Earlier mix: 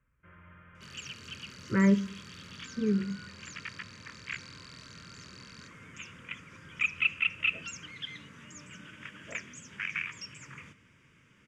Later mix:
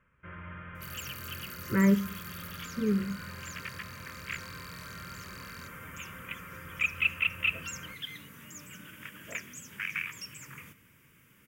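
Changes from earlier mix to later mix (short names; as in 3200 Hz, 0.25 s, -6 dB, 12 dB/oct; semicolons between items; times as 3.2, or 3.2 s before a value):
first sound +10.5 dB; second sound: remove LPF 6900 Hz 24 dB/oct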